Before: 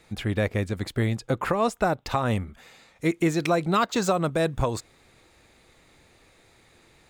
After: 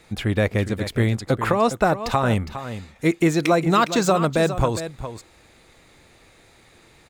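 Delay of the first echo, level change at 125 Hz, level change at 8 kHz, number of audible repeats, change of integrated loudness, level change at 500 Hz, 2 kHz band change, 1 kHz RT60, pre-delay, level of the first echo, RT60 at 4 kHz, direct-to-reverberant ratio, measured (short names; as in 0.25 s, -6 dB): 0.41 s, +5.0 dB, +5.0 dB, 1, +4.5 dB, +5.0 dB, +5.0 dB, none, none, -11.5 dB, none, none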